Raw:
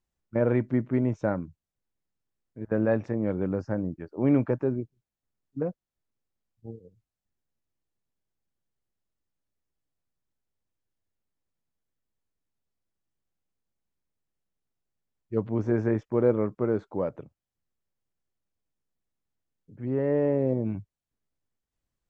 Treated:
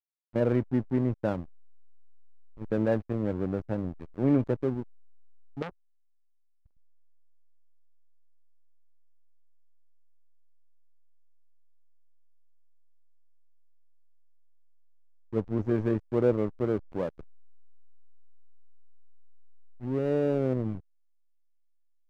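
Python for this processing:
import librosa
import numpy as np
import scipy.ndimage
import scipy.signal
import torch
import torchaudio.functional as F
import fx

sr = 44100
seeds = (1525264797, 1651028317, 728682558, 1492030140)

y = fx.high_shelf(x, sr, hz=2200.0, db=-6.5)
y = fx.backlash(y, sr, play_db=-30.0)
y = fx.transformer_sat(y, sr, knee_hz=1800.0, at=(5.62, 6.77))
y = F.gain(torch.from_numpy(y), -1.0).numpy()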